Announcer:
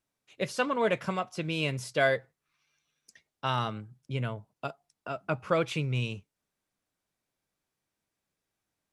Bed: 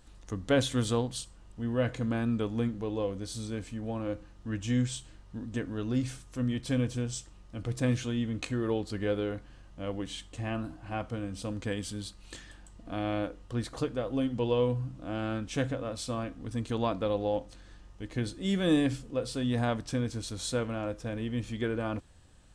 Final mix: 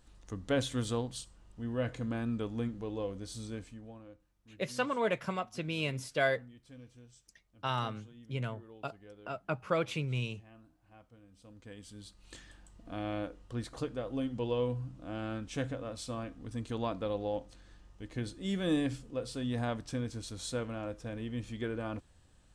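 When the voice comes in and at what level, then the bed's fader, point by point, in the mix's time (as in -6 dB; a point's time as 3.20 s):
4.20 s, -4.0 dB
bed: 3.55 s -5 dB
4.25 s -23.5 dB
11.26 s -23.5 dB
12.37 s -5 dB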